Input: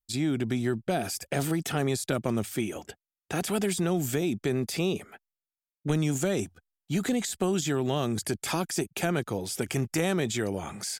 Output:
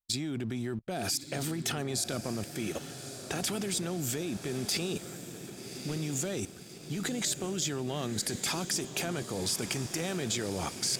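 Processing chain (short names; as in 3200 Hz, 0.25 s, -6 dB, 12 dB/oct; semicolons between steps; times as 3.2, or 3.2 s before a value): level quantiser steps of 19 dB; dynamic EQ 5100 Hz, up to +6 dB, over -54 dBFS, Q 0.92; on a send: diffused feedback echo 1.153 s, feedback 57%, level -10 dB; on the sum: sample leveller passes 1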